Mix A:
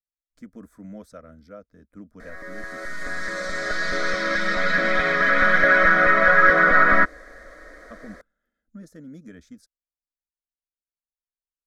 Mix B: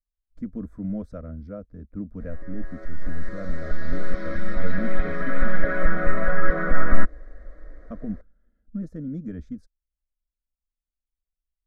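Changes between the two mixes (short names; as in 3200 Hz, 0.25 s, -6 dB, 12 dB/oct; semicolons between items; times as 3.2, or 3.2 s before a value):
background -11.0 dB; master: add tilt -4.5 dB/oct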